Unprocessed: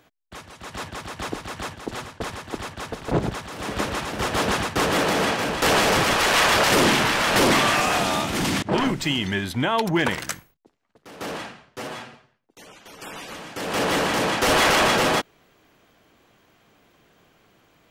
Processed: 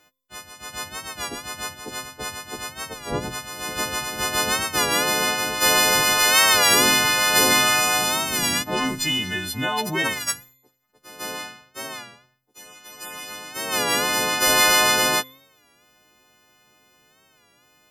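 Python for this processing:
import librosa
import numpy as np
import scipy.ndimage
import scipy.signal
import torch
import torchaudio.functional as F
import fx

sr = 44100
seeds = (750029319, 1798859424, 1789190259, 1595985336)

y = fx.freq_snap(x, sr, grid_st=3)
y = fx.comb_fb(y, sr, f0_hz=130.0, decay_s=0.86, harmonics='all', damping=0.0, mix_pct=40)
y = fx.record_warp(y, sr, rpm=33.33, depth_cents=100.0)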